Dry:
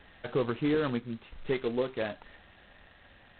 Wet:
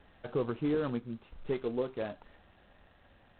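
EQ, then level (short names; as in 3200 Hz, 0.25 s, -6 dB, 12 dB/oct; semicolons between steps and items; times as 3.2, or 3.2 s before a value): bell 1900 Hz -4.5 dB 0.54 oct; high shelf 2600 Hz -9.5 dB; -2.5 dB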